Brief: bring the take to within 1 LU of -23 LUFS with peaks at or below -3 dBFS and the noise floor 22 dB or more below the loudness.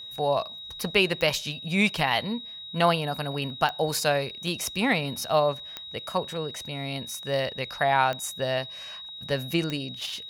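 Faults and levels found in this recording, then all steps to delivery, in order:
clicks found 5; steady tone 3.8 kHz; tone level -38 dBFS; loudness -27.0 LUFS; peak level -8.5 dBFS; loudness target -23.0 LUFS
-> de-click; band-stop 3.8 kHz, Q 30; trim +4 dB

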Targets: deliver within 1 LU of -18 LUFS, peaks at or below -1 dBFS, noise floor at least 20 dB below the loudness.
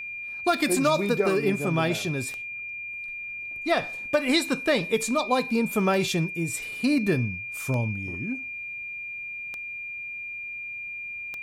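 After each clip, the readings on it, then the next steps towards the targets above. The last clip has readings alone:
clicks found 7; steady tone 2.4 kHz; tone level -33 dBFS; loudness -27.0 LUFS; peak level -10.5 dBFS; loudness target -18.0 LUFS
-> de-click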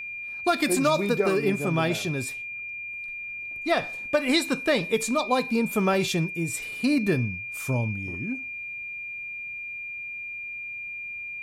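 clicks found 0; steady tone 2.4 kHz; tone level -33 dBFS
-> band-stop 2.4 kHz, Q 30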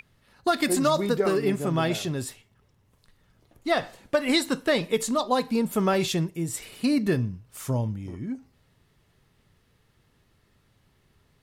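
steady tone not found; loudness -26.0 LUFS; peak level -11.0 dBFS; loudness target -18.0 LUFS
-> trim +8 dB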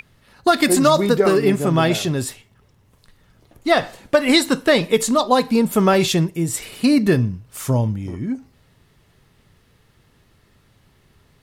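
loudness -18.0 LUFS; peak level -3.0 dBFS; noise floor -58 dBFS

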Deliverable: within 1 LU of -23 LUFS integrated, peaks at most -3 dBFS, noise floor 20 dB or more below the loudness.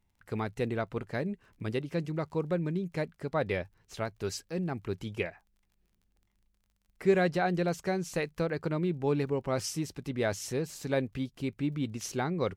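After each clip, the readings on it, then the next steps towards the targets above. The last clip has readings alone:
tick rate 23 per s; loudness -33.0 LUFS; peak level -14.5 dBFS; loudness target -23.0 LUFS
-> de-click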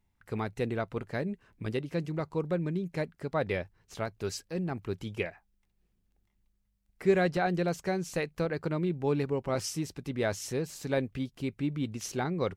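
tick rate 0.080 per s; loudness -33.0 LUFS; peak level -14.0 dBFS; loudness target -23.0 LUFS
-> trim +10 dB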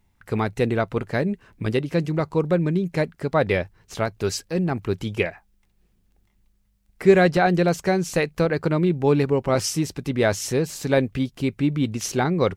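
loudness -23.0 LUFS; peak level -4.0 dBFS; noise floor -65 dBFS

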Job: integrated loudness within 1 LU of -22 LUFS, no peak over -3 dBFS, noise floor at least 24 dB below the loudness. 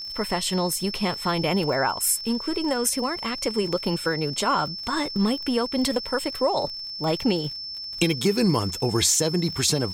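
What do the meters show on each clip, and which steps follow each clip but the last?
tick rate 45 per s; steady tone 5.3 kHz; tone level -32 dBFS; loudness -24.0 LUFS; peak level -8.5 dBFS; loudness target -22.0 LUFS
-> de-click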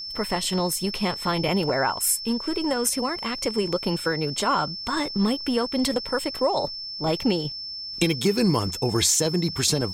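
tick rate 0.20 per s; steady tone 5.3 kHz; tone level -32 dBFS
-> band-stop 5.3 kHz, Q 30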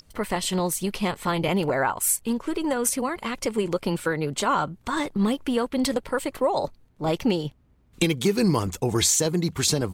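steady tone not found; loudness -25.0 LUFS; peak level -7.5 dBFS; loudness target -22.0 LUFS
-> trim +3 dB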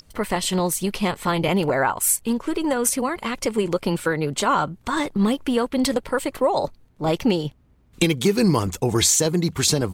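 loudness -22.0 LUFS; peak level -4.5 dBFS; noise floor -57 dBFS

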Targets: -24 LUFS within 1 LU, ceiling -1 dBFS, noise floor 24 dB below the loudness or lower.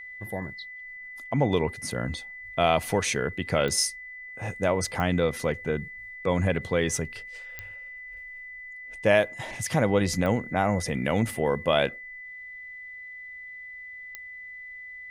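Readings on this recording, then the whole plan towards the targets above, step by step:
clicks found 5; steady tone 2 kHz; tone level -39 dBFS; loudness -26.5 LUFS; peak level -7.5 dBFS; loudness target -24.0 LUFS
-> de-click; band-stop 2 kHz, Q 30; trim +2.5 dB

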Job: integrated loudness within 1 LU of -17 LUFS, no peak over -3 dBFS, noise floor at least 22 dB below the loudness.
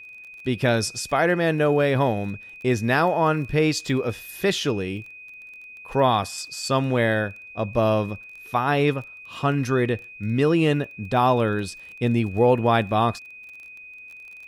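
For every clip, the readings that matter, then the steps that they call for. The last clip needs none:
tick rate 23 per s; steady tone 2.5 kHz; tone level -40 dBFS; loudness -23.0 LUFS; peak level -7.5 dBFS; loudness target -17.0 LUFS
-> de-click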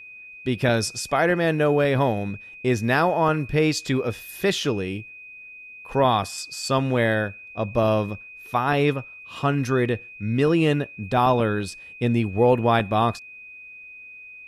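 tick rate 0 per s; steady tone 2.5 kHz; tone level -40 dBFS
-> band-stop 2.5 kHz, Q 30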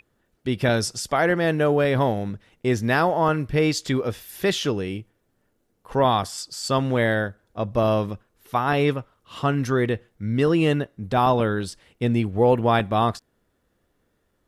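steady tone not found; loudness -23.0 LUFS; peak level -7.5 dBFS; loudness target -17.0 LUFS
-> trim +6 dB; peak limiter -3 dBFS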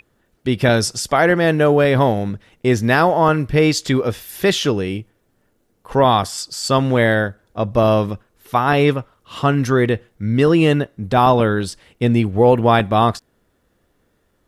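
loudness -17.0 LUFS; peak level -3.0 dBFS; noise floor -65 dBFS

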